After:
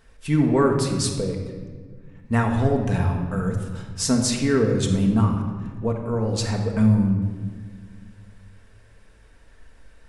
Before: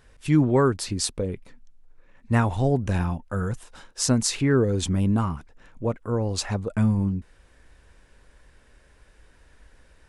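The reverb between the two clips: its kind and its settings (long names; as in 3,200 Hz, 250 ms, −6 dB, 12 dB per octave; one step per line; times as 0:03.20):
rectangular room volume 1,900 cubic metres, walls mixed, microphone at 1.6 metres
level −1 dB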